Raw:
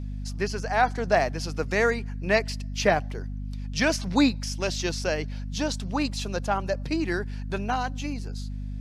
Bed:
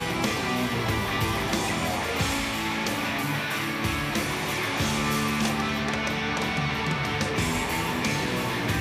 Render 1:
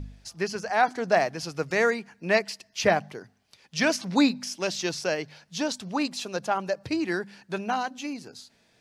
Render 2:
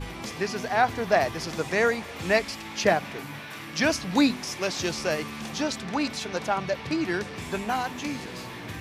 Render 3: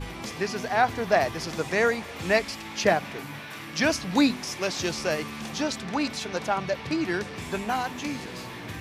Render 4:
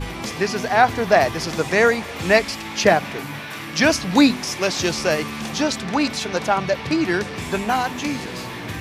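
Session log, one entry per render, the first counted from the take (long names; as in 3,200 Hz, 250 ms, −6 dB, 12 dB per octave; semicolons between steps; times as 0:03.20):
hum removal 50 Hz, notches 5
mix in bed −11 dB
no processing that can be heard
level +7 dB; brickwall limiter −1 dBFS, peak gain reduction 1.5 dB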